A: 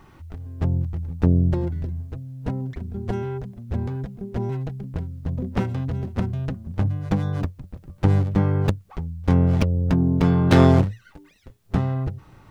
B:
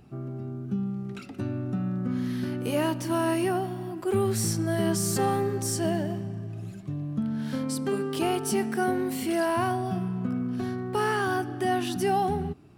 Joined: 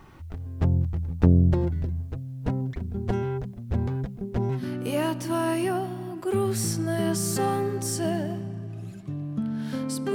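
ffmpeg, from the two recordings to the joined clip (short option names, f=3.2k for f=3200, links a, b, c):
-filter_complex "[0:a]apad=whole_dur=10.14,atrim=end=10.14,atrim=end=4.66,asetpts=PTS-STARTPTS[a];[1:a]atrim=start=2.34:end=7.94,asetpts=PTS-STARTPTS[b];[a][b]acrossfade=d=0.12:c1=tri:c2=tri"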